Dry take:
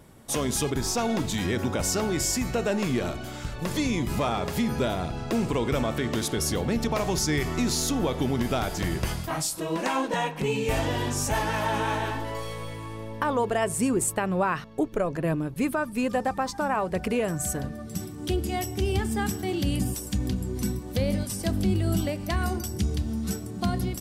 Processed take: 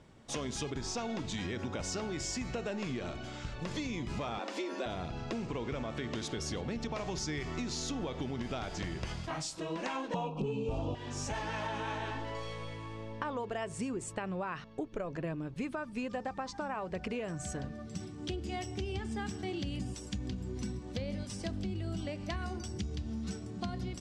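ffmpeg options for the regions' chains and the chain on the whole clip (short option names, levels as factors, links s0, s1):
-filter_complex "[0:a]asettb=1/sr,asplit=3[s0][s1][s2];[s0]atrim=end=4.394[s3];[s1]atrim=start=4.39:end=4.86,asetpts=PTS-STARTPTS,afade=t=in:d=0.004:c=qsin,afade=t=out:st=0.466:d=0.004:c=qsin,highpass=f=210:p=1,afreqshift=130[s4];[s2]atrim=start=4.856[s5];[s3][s4]acrossfade=d=0.004:c1=hsin:c2=qsin[s6];[s6][s5]acrossfade=d=0.004:c1=qsin:c2=hsin,asettb=1/sr,asplit=3[s7][s8][s9];[s7]atrim=end=5.474[s10];[s8]atrim=start=5.47:end=5.9,asetpts=PTS-STARTPTS,afade=t=in:d=0.004:c=qsin,afade=t=out:st=0.426:d=0.004:c=qsin,equalizer=f=4500:t=o:w=0.9:g=-5.5,acrusher=bits=6:mix=0:aa=0.5,lowpass=f=7500:w=0.5412,lowpass=f=7500:w=1.3066[s11];[s9]atrim=start=5.896[s12];[s10][s11]acrossfade=d=0.004:c1=hsin:c2=qsin[s13];[s13][s12]acrossfade=d=0.004:c1=qsin:c2=hsin,asettb=1/sr,asplit=3[s14][s15][s16];[s14]atrim=end=10.144[s17];[s15]atrim=start=10.14:end=10.95,asetpts=PTS-STARTPTS,afade=t=in:d=0.004:c=qsin,afade=t=out:st=0.806:d=0.004:c=qsin,asuperstop=centerf=1800:order=12:qfactor=1.6,tiltshelf=f=1300:g=7.5,acontrast=83[s18];[s16]atrim=start=10.946[s19];[s17][s18]acrossfade=d=0.004:c1=hsin:c2=qsin[s20];[s20][s19]acrossfade=d=0.004:c1=qsin:c2=hsin,lowpass=f=7000:w=0.5412,lowpass=f=7000:w=1.3066,acompressor=threshold=0.0447:ratio=6,equalizer=f=2700:w=1.5:g=2.5,volume=0.473"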